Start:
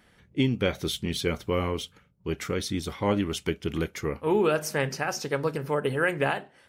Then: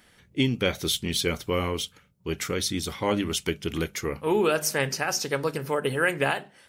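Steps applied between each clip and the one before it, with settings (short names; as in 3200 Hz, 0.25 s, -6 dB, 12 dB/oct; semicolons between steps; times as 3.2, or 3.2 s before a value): high shelf 2900 Hz +8.5 dB; notches 50/100/150/200 Hz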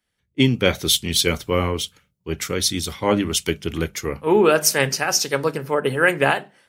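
three-band expander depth 70%; gain +6 dB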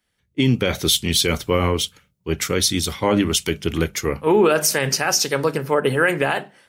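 limiter -10.5 dBFS, peak gain reduction 9 dB; gain +3.5 dB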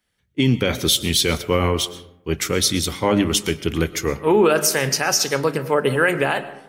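digital reverb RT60 0.86 s, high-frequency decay 0.4×, pre-delay 80 ms, DRR 15 dB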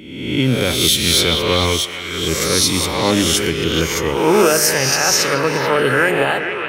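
spectral swells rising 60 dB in 0.99 s; delay with a stepping band-pass 0.431 s, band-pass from 2700 Hz, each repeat -0.7 oct, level -2 dB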